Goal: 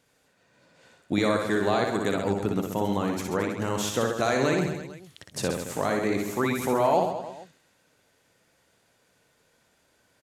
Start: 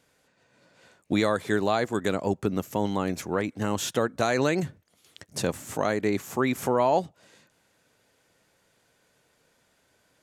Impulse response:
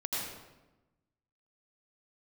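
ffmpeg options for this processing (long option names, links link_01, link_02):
-af "aecho=1:1:60|132|218.4|322.1|446.5:0.631|0.398|0.251|0.158|0.1,volume=-1.5dB"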